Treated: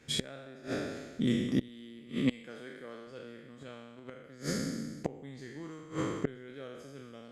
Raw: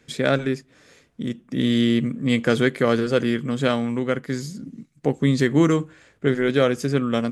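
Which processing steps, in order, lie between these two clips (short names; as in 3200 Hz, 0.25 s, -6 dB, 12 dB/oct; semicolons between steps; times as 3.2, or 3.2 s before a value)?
spectral trails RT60 1.37 s; 1.68–3.07 HPF 180 Hz 12 dB/oct; flipped gate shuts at -13 dBFS, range -26 dB; gain -3 dB; Opus 48 kbps 48000 Hz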